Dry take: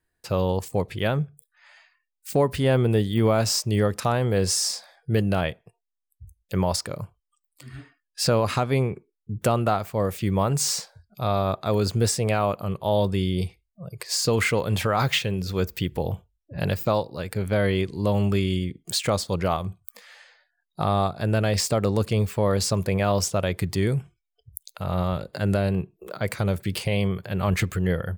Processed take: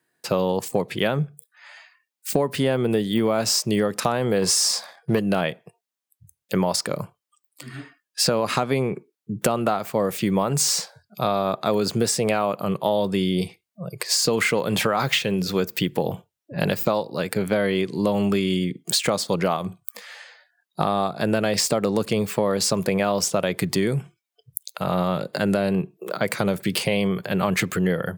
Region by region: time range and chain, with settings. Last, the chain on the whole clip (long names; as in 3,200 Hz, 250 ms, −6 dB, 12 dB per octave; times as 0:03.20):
0:04.42–0:05.19: parametric band 1,100 Hz +5.5 dB 0.42 octaves + leveller curve on the samples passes 1
whole clip: high-pass filter 150 Hz 24 dB per octave; downward compressor, threshold −25 dBFS; level +7.5 dB